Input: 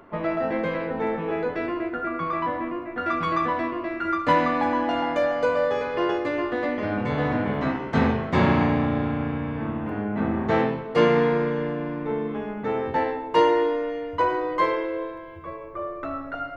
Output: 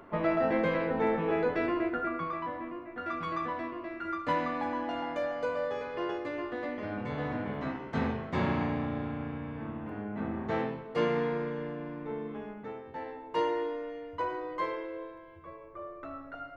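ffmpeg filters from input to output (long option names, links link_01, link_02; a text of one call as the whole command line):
ffmpeg -i in.wav -af "volume=6.5dB,afade=type=out:start_time=1.87:duration=0.52:silence=0.398107,afade=type=out:start_time=12.46:duration=0.38:silence=0.334965,afade=type=in:start_time=12.84:duration=0.57:silence=0.375837" out.wav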